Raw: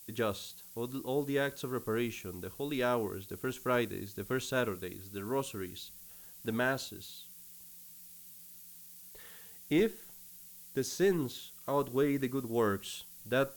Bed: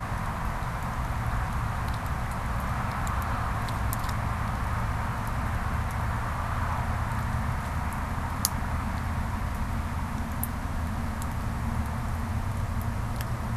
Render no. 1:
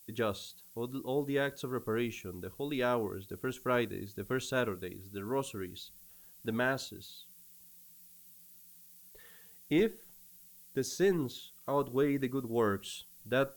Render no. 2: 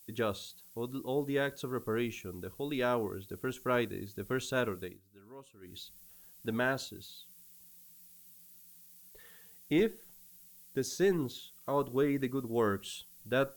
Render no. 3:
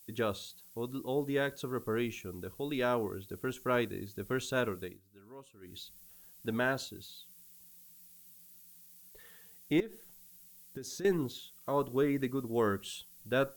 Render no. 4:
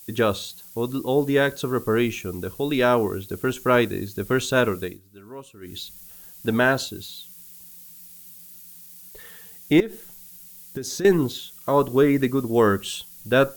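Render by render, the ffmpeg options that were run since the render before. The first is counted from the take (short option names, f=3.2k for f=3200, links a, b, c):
-af "afftdn=nr=6:nf=-52"
-filter_complex "[0:a]asplit=3[a][b][c];[a]atrim=end=5,asetpts=PTS-STARTPTS,afade=t=out:st=4.84:d=0.16:silence=0.133352[d];[b]atrim=start=5:end=5.61,asetpts=PTS-STARTPTS,volume=-17.5dB[e];[c]atrim=start=5.61,asetpts=PTS-STARTPTS,afade=t=in:d=0.16:silence=0.133352[f];[d][e][f]concat=n=3:v=0:a=1"
-filter_complex "[0:a]asettb=1/sr,asplit=3[a][b][c];[a]atrim=end=9.804[d];[b]atrim=start=9.8:end=11.05,asetpts=PTS-STARTPTS,afade=t=in:d=0.004:c=qsin,afade=t=out:st=1.246:d=0.004:c=qsin,acompressor=threshold=-38dB:ratio=12:attack=3.2:release=140:knee=1:detection=peak[e];[c]atrim=start=11.046[f];[d][e]acrossfade=d=0.004:c1=hsin:c2=qsin[g];[g][f]acrossfade=d=0.004:c1=qsin:c2=hsin"
-af "volume=12dB"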